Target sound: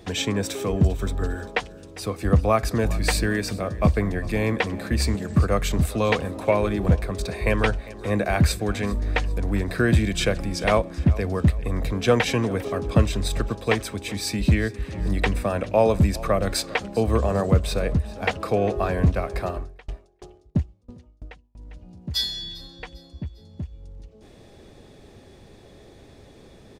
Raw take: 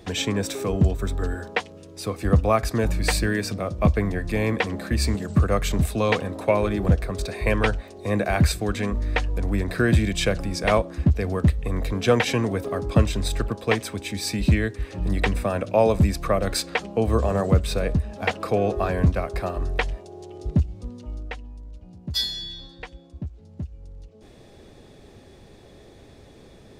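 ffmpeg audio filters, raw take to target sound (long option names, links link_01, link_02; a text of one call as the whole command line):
ffmpeg -i in.wav -filter_complex "[0:a]aecho=1:1:400|800|1200:0.106|0.0434|0.0178,asettb=1/sr,asplit=3[link_01][link_02][link_03];[link_01]atrim=end=19.554[link_04];[link_02]atrim=start=19.55:end=21.59,asetpts=PTS-STARTPTS,afade=type=in:duration=0.004:curve=qsin,afade=type=out:start_time=2.036:duration=0.004:curve=qsin,aeval=exprs='val(0)*pow(10,-33*if(lt(mod(3*n/s,1),2*abs(3)/1000),1-mod(3*n/s,1)/(2*abs(3)/1000),(mod(3*n/s,1)-2*abs(3)/1000)/(1-2*abs(3)/1000))/20)':channel_layout=same[link_05];[link_03]atrim=start=21.586[link_06];[link_04][link_05]acrossfade=duration=0.004:curve1=hsin:curve2=qsin[link_07];[link_07][link_06]acrossfade=duration=0.004:curve1=qsin:curve2=hsin" out.wav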